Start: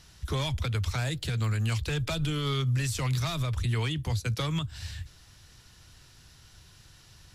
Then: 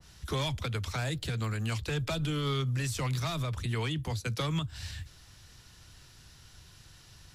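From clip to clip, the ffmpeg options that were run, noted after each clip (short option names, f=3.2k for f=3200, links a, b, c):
-filter_complex "[0:a]acrossover=split=140|520|4500[a][b][c][d];[a]acompressor=threshold=-39dB:ratio=6[e];[e][b][c][d]amix=inputs=4:normalize=0,adynamicequalizer=threshold=0.00562:dfrequency=1600:dqfactor=0.7:tfrequency=1600:tqfactor=0.7:attack=5:release=100:ratio=0.375:range=1.5:mode=cutabove:tftype=highshelf"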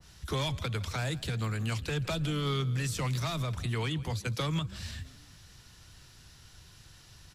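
-filter_complex "[0:a]asplit=5[a][b][c][d][e];[b]adelay=164,afreqshift=32,volume=-19.5dB[f];[c]adelay=328,afreqshift=64,volume=-24.9dB[g];[d]adelay=492,afreqshift=96,volume=-30.2dB[h];[e]adelay=656,afreqshift=128,volume=-35.6dB[i];[a][f][g][h][i]amix=inputs=5:normalize=0"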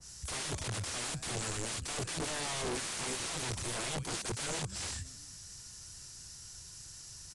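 -af "aexciter=amount=7.8:drive=3.5:freq=5.1k,aeval=exprs='(mod(26.6*val(0)+1,2)-1)/26.6':c=same,aresample=22050,aresample=44100,volume=-2.5dB"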